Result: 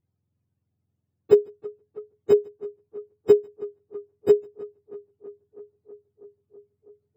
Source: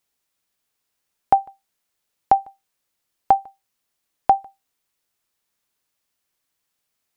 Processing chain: spectrum mirrored in octaves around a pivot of 570 Hz; tape echo 0.324 s, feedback 86%, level -19 dB, low-pass 1800 Hz; gain +1 dB; Vorbis 192 kbps 44100 Hz

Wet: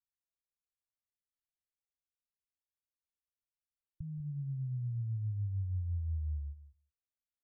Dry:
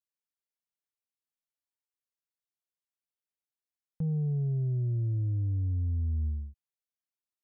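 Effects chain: inverse Chebyshev low-pass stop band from 580 Hz, stop band 80 dB; compressor, threshold -39 dBFS, peak gain reduction 10 dB; outdoor echo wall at 33 m, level -14 dB; loudest bins only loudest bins 16; echo 0.173 s -24 dB; gain +4.5 dB

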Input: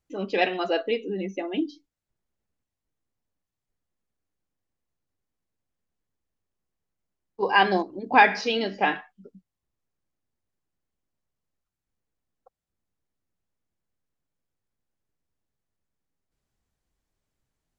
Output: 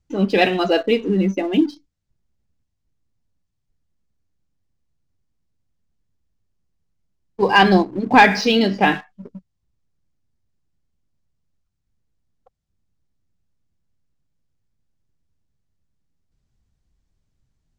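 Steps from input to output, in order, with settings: LPF 6000 Hz; tone controls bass +13 dB, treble +7 dB; sample leveller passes 1; gain +2.5 dB

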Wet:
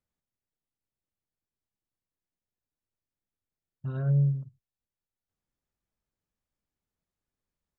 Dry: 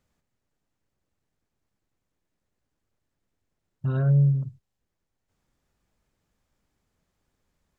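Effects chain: upward expander 1.5:1, over -39 dBFS; gain -4 dB

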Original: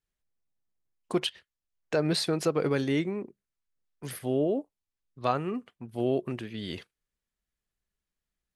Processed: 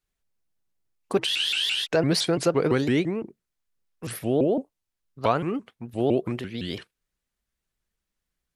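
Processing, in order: spectral freeze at 1.27, 0.57 s; shaped vibrato saw up 5.9 Hz, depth 250 cents; gain +4.5 dB

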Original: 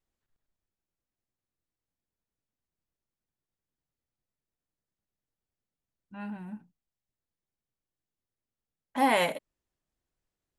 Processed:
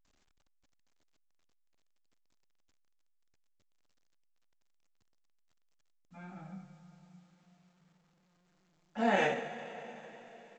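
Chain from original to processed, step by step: two-slope reverb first 0.31 s, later 4.1 s, from -18 dB, DRR -3 dB; pitch shift -2.5 st; gain -8 dB; A-law 128 kbps 16000 Hz

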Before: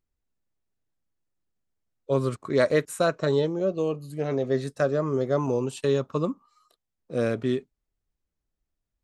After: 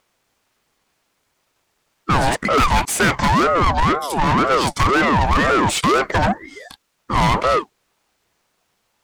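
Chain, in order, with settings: overdrive pedal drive 33 dB, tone 5300 Hz, clips at -9.5 dBFS; ring modulator with a swept carrier 670 Hz, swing 40%, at 2 Hz; gain +3.5 dB

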